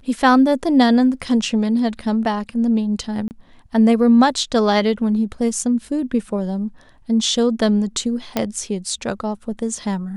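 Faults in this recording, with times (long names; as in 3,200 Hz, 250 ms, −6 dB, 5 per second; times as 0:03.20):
0:03.28–0:03.31: drop-out 29 ms
0:05.59: drop-out 2.6 ms
0:08.37: click −5 dBFS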